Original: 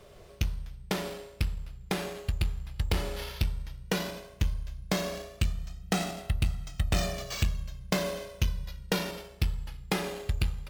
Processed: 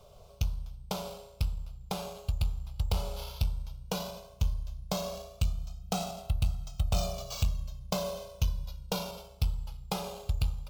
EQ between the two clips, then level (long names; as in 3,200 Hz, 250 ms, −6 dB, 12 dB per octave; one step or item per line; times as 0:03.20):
parametric band 9,300 Hz −4.5 dB 0.5 octaves
phaser with its sweep stopped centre 760 Hz, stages 4
0.0 dB